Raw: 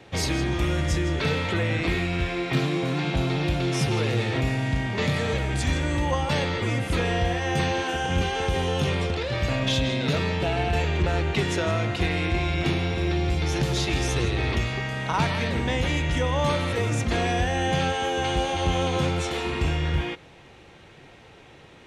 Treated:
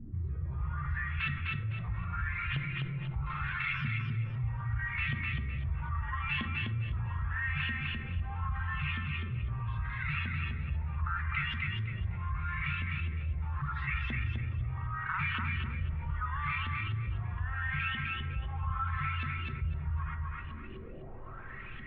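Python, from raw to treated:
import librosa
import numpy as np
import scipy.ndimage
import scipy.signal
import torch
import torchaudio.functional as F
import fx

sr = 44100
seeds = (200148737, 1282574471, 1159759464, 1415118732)

y = fx.weighting(x, sr, curve='D', at=(3.26, 3.73))
y = fx.dereverb_blind(y, sr, rt60_s=1.0)
y = scipy.signal.sosfilt(scipy.signal.ellip(3, 1.0, 40, [140.0, 1200.0], 'bandstop', fs=sr, output='sos'), y)
y = fx.dmg_noise_colour(y, sr, seeds[0], colour='brown', level_db=-52.0)
y = fx.comb_fb(y, sr, f0_hz=380.0, decay_s=0.32, harmonics='odd', damping=0.0, mix_pct=70)
y = fx.filter_lfo_lowpass(y, sr, shape='saw_up', hz=0.78, low_hz=230.0, high_hz=3100.0, q=5.8)
y = fx.air_absorb(y, sr, metres=430.0)
y = fx.echo_feedback(y, sr, ms=254, feedback_pct=26, wet_db=-4)
y = fx.rev_fdn(y, sr, rt60_s=0.89, lf_ratio=1.2, hf_ratio=0.45, size_ms=27.0, drr_db=7.5)
y = fx.env_flatten(y, sr, amount_pct=50)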